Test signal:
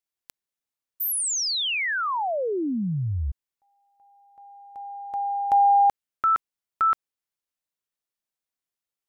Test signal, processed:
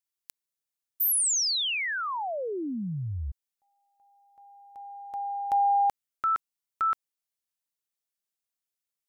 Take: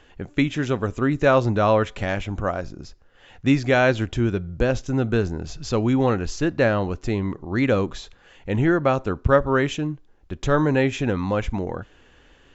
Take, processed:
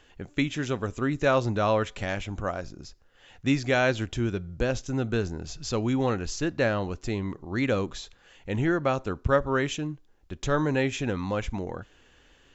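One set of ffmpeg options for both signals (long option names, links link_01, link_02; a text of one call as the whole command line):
ffmpeg -i in.wav -af "highshelf=frequency=3500:gain=8,volume=-6dB" out.wav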